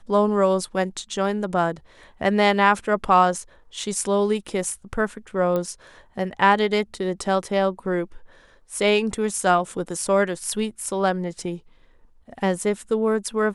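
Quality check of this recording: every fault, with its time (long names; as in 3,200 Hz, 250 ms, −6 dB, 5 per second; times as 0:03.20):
0:05.56: click −14 dBFS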